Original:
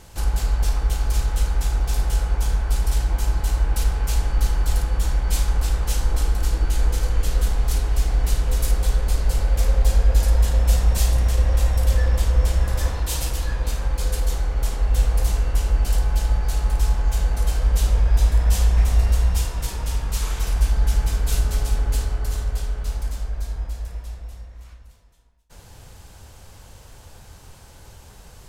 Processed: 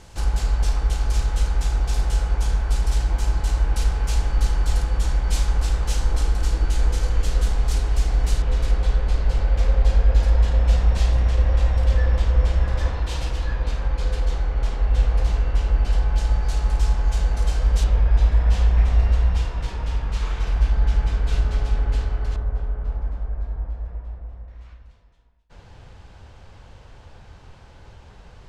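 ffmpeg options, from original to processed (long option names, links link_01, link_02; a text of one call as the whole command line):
ffmpeg -i in.wav -af "asetnsamples=nb_out_samples=441:pad=0,asendcmd='8.42 lowpass f 3800;16.18 lowpass f 6600;17.84 lowpass f 3300;22.36 lowpass f 1300;24.48 lowpass f 3400',lowpass=7800" out.wav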